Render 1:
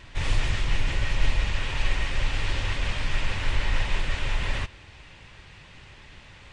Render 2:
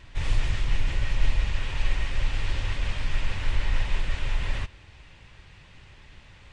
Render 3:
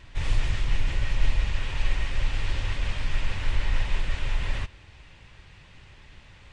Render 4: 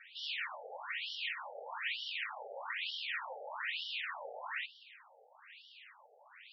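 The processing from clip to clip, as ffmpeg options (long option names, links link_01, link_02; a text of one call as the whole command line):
ffmpeg -i in.wav -af "lowshelf=frequency=120:gain=5.5,volume=-4.5dB" out.wav
ffmpeg -i in.wav -af anull out.wav
ffmpeg -i in.wav -af "afftfilt=real='re*between(b*sr/1024,580*pow(4100/580,0.5+0.5*sin(2*PI*1.1*pts/sr))/1.41,580*pow(4100/580,0.5+0.5*sin(2*PI*1.1*pts/sr))*1.41)':imag='im*between(b*sr/1024,580*pow(4100/580,0.5+0.5*sin(2*PI*1.1*pts/sr))/1.41,580*pow(4100/580,0.5+0.5*sin(2*PI*1.1*pts/sr))*1.41)':win_size=1024:overlap=0.75,volume=3dB" out.wav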